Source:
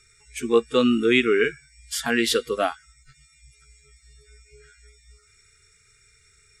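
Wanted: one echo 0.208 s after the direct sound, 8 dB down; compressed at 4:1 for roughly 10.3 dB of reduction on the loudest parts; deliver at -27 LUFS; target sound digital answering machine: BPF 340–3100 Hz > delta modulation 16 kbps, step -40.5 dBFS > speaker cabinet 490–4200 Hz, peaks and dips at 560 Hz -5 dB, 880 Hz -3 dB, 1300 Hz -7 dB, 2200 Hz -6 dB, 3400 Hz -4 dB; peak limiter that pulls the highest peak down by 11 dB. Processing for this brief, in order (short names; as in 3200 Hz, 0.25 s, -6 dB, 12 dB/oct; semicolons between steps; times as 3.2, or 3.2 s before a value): compressor 4:1, threshold -26 dBFS; limiter -24 dBFS; BPF 340–3100 Hz; echo 0.208 s -8 dB; delta modulation 16 kbps, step -40.5 dBFS; speaker cabinet 490–4200 Hz, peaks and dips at 560 Hz -5 dB, 880 Hz -3 dB, 1300 Hz -7 dB, 2200 Hz -6 dB, 3400 Hz -4 dB; gain +19 dB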